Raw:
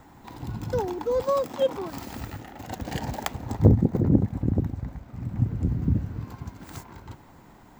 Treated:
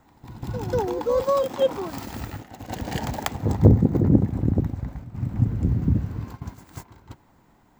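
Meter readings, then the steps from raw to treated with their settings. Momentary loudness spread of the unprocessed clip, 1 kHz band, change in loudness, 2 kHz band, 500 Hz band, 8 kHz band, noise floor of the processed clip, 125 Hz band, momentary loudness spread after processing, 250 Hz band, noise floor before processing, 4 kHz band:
19 LU, +2.5 dB, +3.0 dB, +2.5 dB, +3.0 dB, +2.5 dB, -59 dBFS, +3.0 dB, 18 LU, +3.0 dB, -51 dBFS, +2.5 dB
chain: gate -38 dBFS, range -10 dB; reverse echo 0.192 s -10.5 dB; gain +2.5 dB

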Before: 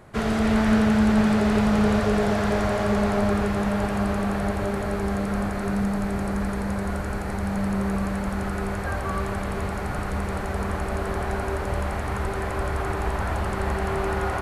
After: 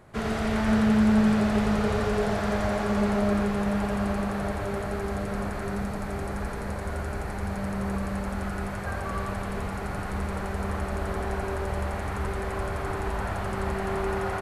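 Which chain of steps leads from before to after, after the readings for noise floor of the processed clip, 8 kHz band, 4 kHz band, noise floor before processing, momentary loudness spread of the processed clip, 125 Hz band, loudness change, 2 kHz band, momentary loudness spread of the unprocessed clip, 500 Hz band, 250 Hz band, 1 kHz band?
-33 dBFS, -3.5 dB, -3.5 dB, -29 dBFS, 9 LU, -3.5 dB, -3.0 dB, -3.5 dB, 8 LU, -3.0 dB, -3.0 dB, -3.5 dB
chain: echo 93 ms -5 dB; gain -4.5 dB

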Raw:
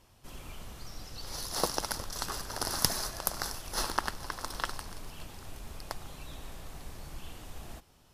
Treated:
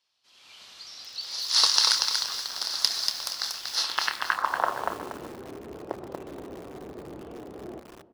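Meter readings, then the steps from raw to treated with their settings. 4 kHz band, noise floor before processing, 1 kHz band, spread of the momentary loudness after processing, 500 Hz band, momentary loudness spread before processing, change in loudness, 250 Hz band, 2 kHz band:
+13.0 dB, -61 dBFS, +6.0 dB, 22 LU, +4.0 dB, 16 LU, +10.0 dB, +3.0 dB, +8.0 dB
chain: spectral gain 1.49–1.98, 850–11000 Hz +8 dB; band-pass sweep 4300 Hz -> 380 Hz, 3.84–4.92; HPF 55 Hz 24 dB/oct; high shelf 3500 Hz -8.5 dB; AGC gain up to 16 dB; notches 50/100/150 Hz; doubler 28 ms -11 dB; echo with dull and thin repeats by turns 0.124 s, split 2100 Hz, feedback 70%, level -13 dB; lo-fi delay 0.237 s, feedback 35%, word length 7-bit, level -4 dB; gain +1 dB

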